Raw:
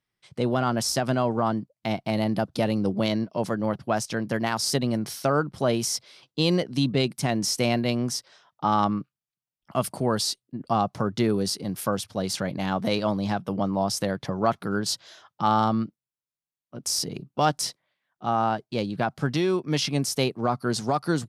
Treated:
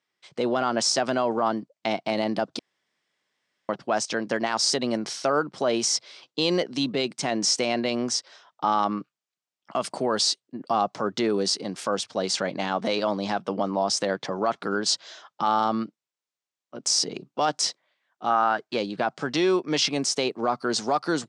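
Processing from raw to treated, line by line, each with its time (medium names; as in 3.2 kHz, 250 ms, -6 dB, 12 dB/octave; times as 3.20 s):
2.59–3.69 s: room tone
18.30–18.78 s: peaking EQ 1.5 kHz +9.5 dB 1 oct
whole clip: steep low-pass 8.1 kHz 36 dB/octave; peak limiter -16 dBFS; high-pass 310 Hz 12 dB/octave; trim +4.5 dB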